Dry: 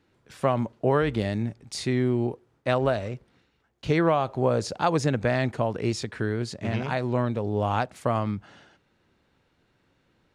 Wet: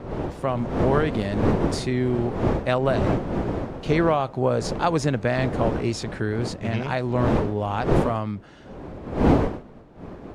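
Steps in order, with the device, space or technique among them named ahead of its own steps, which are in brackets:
smartphone video outdoors (wind on the microphone 430 Hz −26 dBFS; automatic gain control gain up to 7 dB; level −4.5 dB; AAC 96 kbit/s 48,000 Hz)

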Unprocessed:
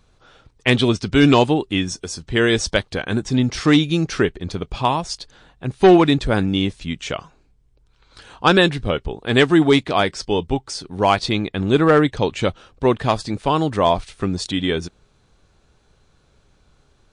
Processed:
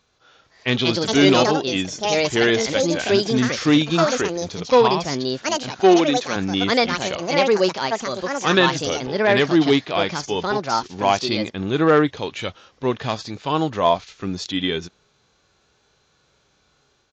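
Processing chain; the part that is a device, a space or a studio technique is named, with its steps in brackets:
delay with pitch and tempo change per echo 353 ms, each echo +5 semitones, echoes 2
spectral tilt +1.5 dB per octave
0:05.81–0:06.36: high-pass filter 210 Hz 12 dB per octave
harmonic and percussive parts rebalanced percussive −10 dB
Bluetooth headset (high-pass filter 130 Hz 6 dB per octave; automatic gain control gain up to 3 dB; downsampling to 16,000 Hz; SBC 64 kbit/s 16,000 Hz)

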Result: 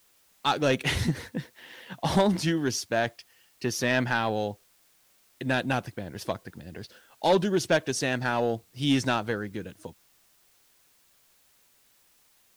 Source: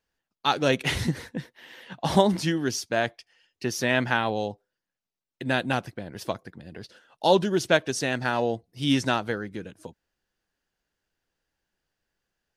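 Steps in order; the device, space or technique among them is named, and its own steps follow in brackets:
open-reel tape (soft clipping −14 dBFS, distortion −15 dB; parametric band 88 Hz +3 dB; white noise bed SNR 34 dB)

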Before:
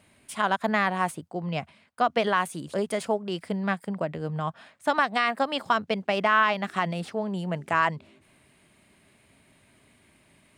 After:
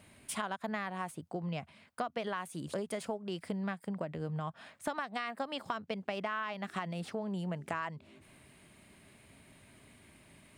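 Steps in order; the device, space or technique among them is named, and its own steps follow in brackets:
ASMR close-microphone chain (low-shelf EQ 190 Hz +3.5 dB; downward compressor 5 to 1, threshold −35 dBFS, peak gain reduction 17 dB; high-shelf EQ 12,000 Hz +3.5 dB)

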